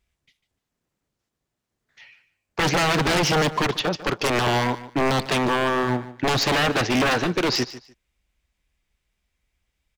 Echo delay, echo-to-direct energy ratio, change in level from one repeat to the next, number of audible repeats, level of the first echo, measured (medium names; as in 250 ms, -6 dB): 148 ms, -15.5 dB, -14.0 dB, 2, -15.5 dB